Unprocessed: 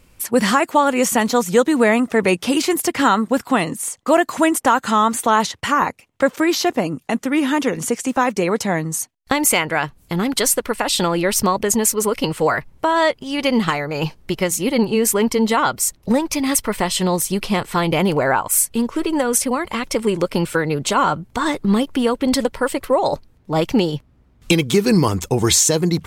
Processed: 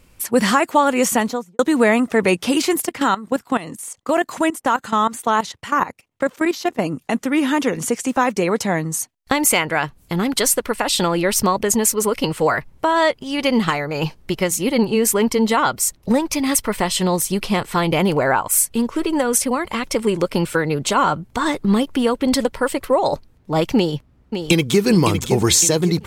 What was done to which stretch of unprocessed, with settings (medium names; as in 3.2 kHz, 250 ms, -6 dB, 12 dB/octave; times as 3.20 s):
1.11–1.59 s: studio fade out
2.85–6.79 s: level held to a coarse grid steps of 16 dB
23.76–24.86 s: echo throw 560 ms, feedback 45%, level -7.5 dB